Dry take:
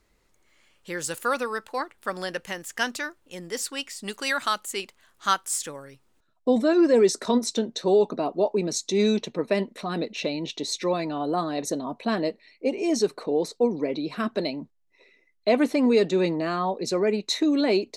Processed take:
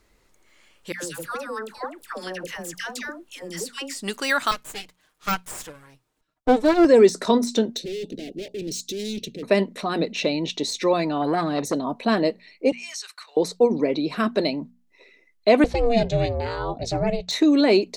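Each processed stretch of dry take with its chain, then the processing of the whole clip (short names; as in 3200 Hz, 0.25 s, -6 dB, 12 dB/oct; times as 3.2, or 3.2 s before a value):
0.92–3.98 compressor 4:1, threshold -33 dBFS + dispersion lows, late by 0.114 s, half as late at 930 Hz
4.51–6.85 minimum comb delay 6.5 ms + upward expander, over -31 dBFS
7.77–9.43 overloaded stage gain 30.5 dB + Chebyshev band-stop 430–2900 Hz + bell 770 Hz -6 dB 1.5 oct
11.22–11.74 bell 110 Hz +6.5 dB 1 oct + core saturation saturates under 660 Hz
12.72–13.37 HPF 1400 Hz 24 dB/oct + compressor 2:1, threshold -39 dBFS
15.64–17.31 LPF 6500 Hz + dynamic EQ 1100 Hz, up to -7 dB, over -38 dBFS, Q 0.8 + ring modulator 230 Hz
whole clip: notches 60/120/180/240 Hz; de-esser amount 65%; gain +5 dB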